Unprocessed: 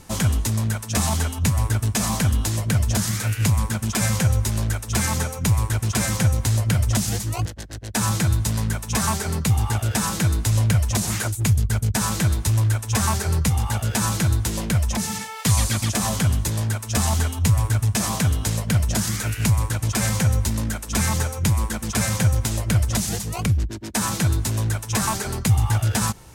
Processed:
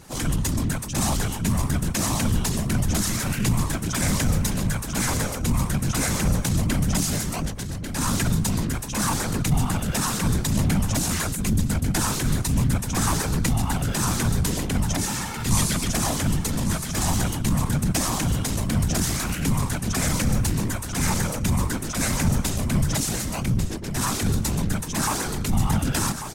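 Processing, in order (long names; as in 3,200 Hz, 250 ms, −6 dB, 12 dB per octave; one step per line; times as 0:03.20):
random phases in short frames
transient designer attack −8 dB, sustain +3 dB
single-tap delay 1,144 ms −9.5 dB
level −1 dB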